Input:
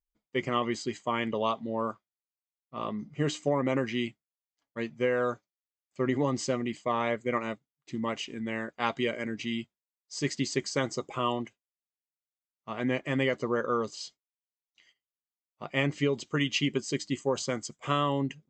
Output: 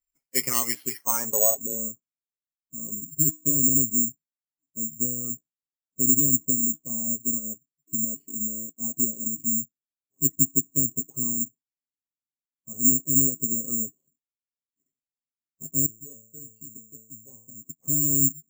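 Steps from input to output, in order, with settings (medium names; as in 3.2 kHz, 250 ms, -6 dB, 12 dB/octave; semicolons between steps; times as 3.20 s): coarse spectral quantiser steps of 15 dB; comb 7.3 ms, depth 66%; low-pass sweep 2.4 kHz -> 240 Hz, 0.89–1.89 s; 15.86–17.61 s: inharmonic resonator 110 Hz, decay 0.56 s, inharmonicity 0.002; careless resampling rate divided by 6×, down filtered, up zero stuff; trim -6 dB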